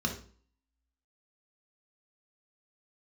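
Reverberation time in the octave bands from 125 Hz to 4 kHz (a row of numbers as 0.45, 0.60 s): 0.50, 0.55, 0.45, 0.45, 0.40, 0.40 s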